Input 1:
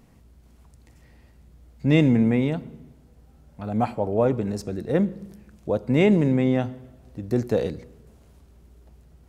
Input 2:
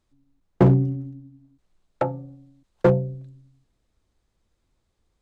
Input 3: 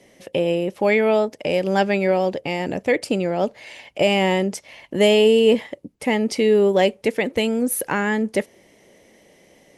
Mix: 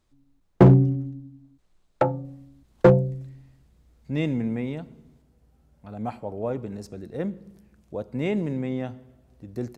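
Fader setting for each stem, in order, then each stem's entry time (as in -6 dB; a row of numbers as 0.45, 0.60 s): -8.0 dB, +2.5 dB, off; 2.25 s, 0.00 s, off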